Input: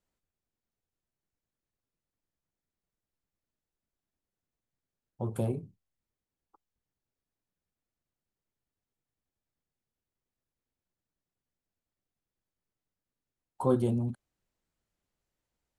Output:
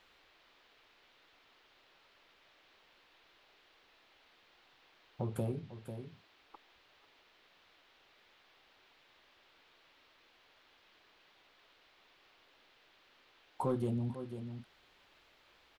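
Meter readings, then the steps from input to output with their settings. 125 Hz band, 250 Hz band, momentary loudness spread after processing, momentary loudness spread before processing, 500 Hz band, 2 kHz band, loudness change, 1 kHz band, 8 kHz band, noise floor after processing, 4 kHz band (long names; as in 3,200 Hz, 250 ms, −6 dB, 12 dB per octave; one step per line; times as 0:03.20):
−4.5 dB, −6.0 dB, 13 LU, 11 LU, −6.5 dB, +4.0 dB, −7.5 dB, −3.0 dB, −5.0 dB, −68 dBFS, can't be measured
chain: parametric band 8,800 Hz −5 dB 0.35 octaves
single-tap delay 495 ms −18 dB
in parallel at −5 dB: hard clipping −23 dBFS, distortion −11 dB
on the sum: downward compressor 2 to 1, threshold −49 dBFS, peak gain reduction 16.5 dB
noise in a band 280–3,900 Hz −72 dBFS
level +5 dB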